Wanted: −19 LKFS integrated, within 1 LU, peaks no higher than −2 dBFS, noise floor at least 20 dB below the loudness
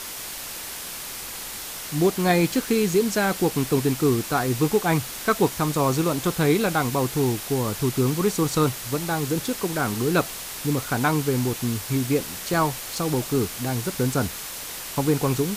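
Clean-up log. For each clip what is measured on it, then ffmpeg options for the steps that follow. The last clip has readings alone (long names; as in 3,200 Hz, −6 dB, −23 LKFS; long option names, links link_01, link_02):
background noise floor −35 dBFS; target noise floor −44 dBFS; integrated loudness −24.0 LKFS; sample peak −7.0 dBFS; target loudness −19.0 LKFS
→ -af "afftdn=noise_reduction=9:noise_floor=-35"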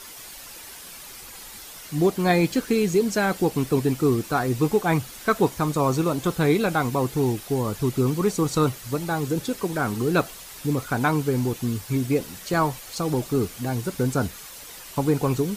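background noise floor −42 dBFS; target noise floor −44 dBFS
→ -af "afftdn=noise_reduction=6:noise_floor=-42"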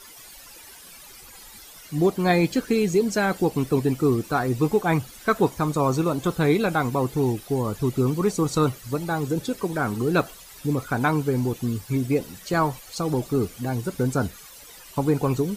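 background noise floor −46 dBFS; integrated loudness −24.0 LKFS; sample peak −7.5 dBFS; target loudness −19.0 LKFS
→ -af "volume=5dB"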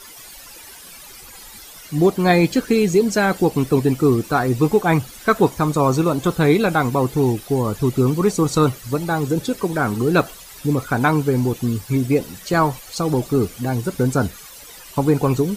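integrated loudness −19.0 LKFS; sample peak −2.5 dBFS; background noise floor −41 dBFS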